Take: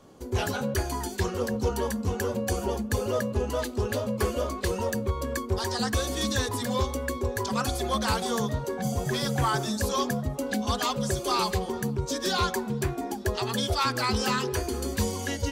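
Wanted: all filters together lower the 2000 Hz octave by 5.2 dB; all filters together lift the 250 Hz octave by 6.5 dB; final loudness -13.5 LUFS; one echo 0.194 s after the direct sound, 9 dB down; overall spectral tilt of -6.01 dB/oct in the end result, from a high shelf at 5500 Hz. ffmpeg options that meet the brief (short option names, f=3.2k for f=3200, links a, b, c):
-af "equalizer=f=250:t=o:g=8,equalizer=f=2k:t=o:g=-6.5,highshelf=f=5.5k:g=-5.5,aecho=1:1:194:0.355,volume=12.5dB"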